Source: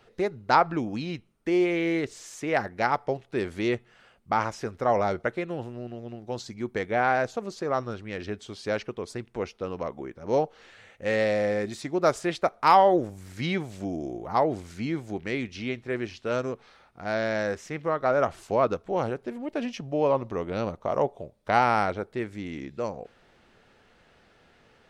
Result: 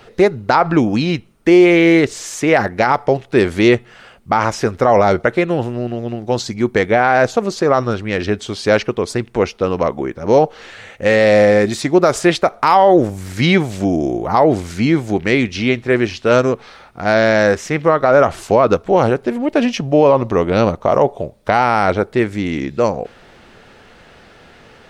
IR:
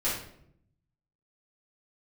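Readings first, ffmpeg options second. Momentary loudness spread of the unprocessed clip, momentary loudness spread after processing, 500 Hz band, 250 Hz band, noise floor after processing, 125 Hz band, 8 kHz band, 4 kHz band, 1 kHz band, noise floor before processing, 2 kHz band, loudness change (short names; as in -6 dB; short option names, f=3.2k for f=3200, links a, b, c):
12 LU, 9 LU, +13.5 dB, +15.0 dB, -45 dBFS, +14.5 dB, +15.0 dB, +13.5 dB, +9.5 dB, -61 dBFS, +13.0 dB, +12.5 dB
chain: -af "alimiter=level_in=16.5dB:limit=-1dB:release=50:level=0:latency=1,volume=-1dB"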